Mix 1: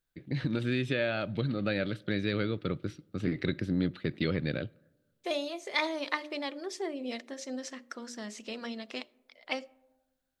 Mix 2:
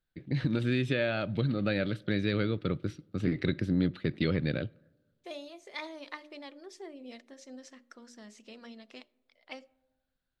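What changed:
second voice −10.5 dB
master: add low-shelf EQ 230 Hz +3.5 dB

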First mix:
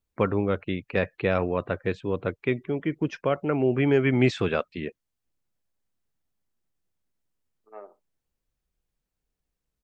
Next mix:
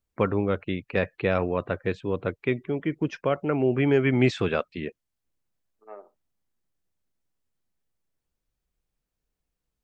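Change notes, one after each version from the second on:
second voice: entry −1.85 s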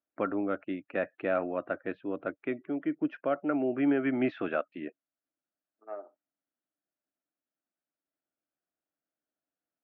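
first voice −5.5 dB
master: add loudspeaker in its box 290–2,600 Hz, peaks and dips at 290 Hz +9 dB, 440 Hz −7 dB, 640 Hz +7 dB, 990 Hz −6 dB, 1,400 Hz +5 dB, 2,200 Hz −5 dB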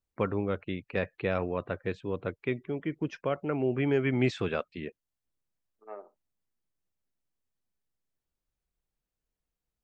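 master: remove loudspeaker in its box 290–2,600 Hz, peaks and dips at 290 Hz +9 dB, 440 Hz −7 dB, 640 Hz +7 dB, 990 Hz −6 dB, 1,400 Hz +5 dB, 2,200 Hz −5 dB

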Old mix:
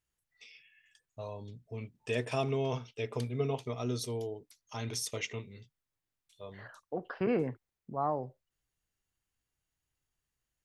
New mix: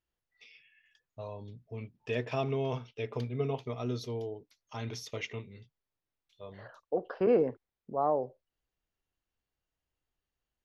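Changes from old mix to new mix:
first voice: add moving average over 5 samples
second voice: add octave-band graphic EQ 125/500/2,000 Hz −6/+8/−5 dB

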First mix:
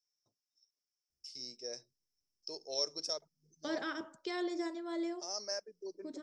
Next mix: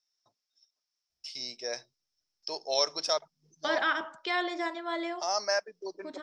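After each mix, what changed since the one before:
first voice +4.5 dB
master: add flat-topped bell 1,600 Hz +13.5 dB 2.9 octaves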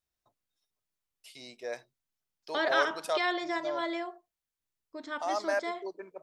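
first voice: remove low-pass with resonance 5,400 Hz, resonance Q 11
second voice: entry −1.10 s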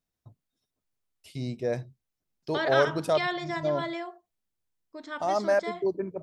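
first voice: remove Bessel high-pass filter 940 Hz, order 2

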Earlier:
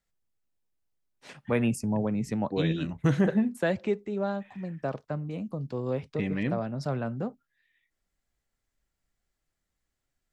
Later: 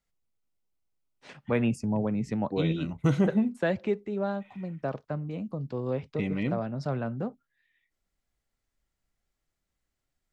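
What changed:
first voice: add high-frequency loss of the air 72 metres
second voice: add Butterworth band-reject 1,700 Hz, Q 5.2

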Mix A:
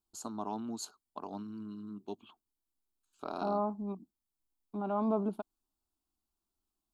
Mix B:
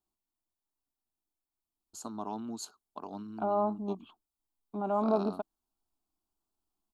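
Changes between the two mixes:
first voice: entry +1.80 s
second voice: add parametric band 660 Hz +4.5 dB 1.5 octaves

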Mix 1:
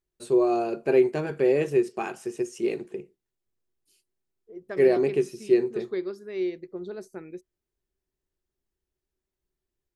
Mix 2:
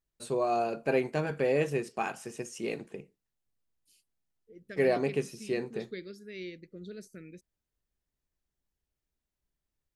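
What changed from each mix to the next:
second voice: add Butterworth band-reject 890 Hz, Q 0.64
master: add parametric band 370 Hz −15 dB 0.26 octaves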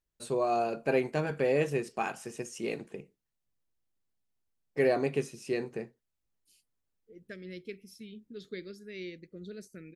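second voice: entry +2.60 s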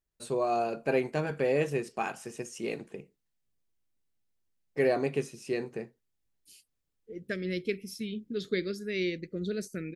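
second voice +10.5 dB

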